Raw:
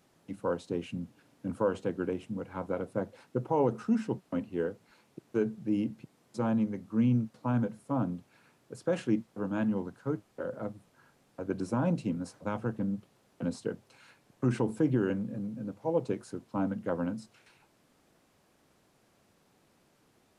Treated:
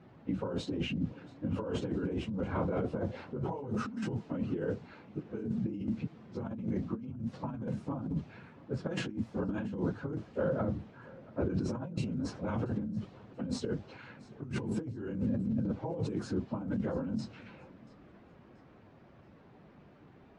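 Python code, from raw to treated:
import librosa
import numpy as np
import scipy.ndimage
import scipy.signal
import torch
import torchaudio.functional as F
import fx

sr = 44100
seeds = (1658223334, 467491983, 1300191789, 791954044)

y = fx.phase_scramble(x, sr, seeds[0], window_ms=50)
y = scipy.signal.sosfilt(scipy.signal.butter(2, 6800.0, 'lowpass', fs=sr, output='sos'), y)
y = fx.env_lowpass(y, sr, base_hz=2200.0, full_db=-25.0)
y = fx.highpass(y, sr, hz=54.0, slope=6)
y = fx.low_shelf(y, sr, hz=240.0, db=9.5)
y = fx.over_compress(y, sr, threshold_db=-35.0, ratio=-1.0)
y = fx.transient(y, sr, attack_db=-2, sustain_db=2)
y = fx.echo_feedback(y, sr, ms=682, feedback_pct=38, wet_db=-22)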